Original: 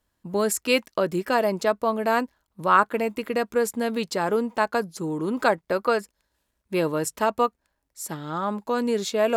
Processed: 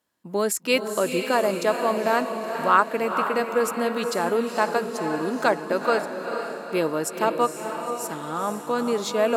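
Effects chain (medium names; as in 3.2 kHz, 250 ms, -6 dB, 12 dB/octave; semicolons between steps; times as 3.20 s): high-pass 190 Hz 12 dB/octave; echo that smears into a reverb 471 ms, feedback 53%, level -6.5 dB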